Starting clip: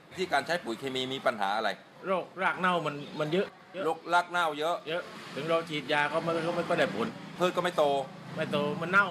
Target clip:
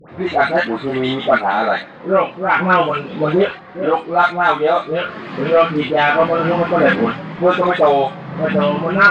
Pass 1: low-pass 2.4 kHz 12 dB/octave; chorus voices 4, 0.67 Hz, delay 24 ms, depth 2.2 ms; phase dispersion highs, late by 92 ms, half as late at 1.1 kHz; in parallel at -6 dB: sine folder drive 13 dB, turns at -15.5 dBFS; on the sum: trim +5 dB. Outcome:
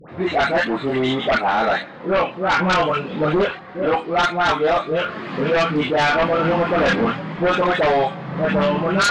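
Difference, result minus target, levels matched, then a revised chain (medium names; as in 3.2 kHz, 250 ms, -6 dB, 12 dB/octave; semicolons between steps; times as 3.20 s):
sine folder: distortion +19 dB
low-pass 2.4 kHz 12 dB/octave; chorus voices 4, 0.67 Hz, delay 24 ms, depth 2.2 ms; phase dispersion highs, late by 92 ms, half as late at 1.1 kHz; in parallel at -6 dB: sine folder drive 13 dB, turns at -5 dBFS; on the sum: trim +5 dB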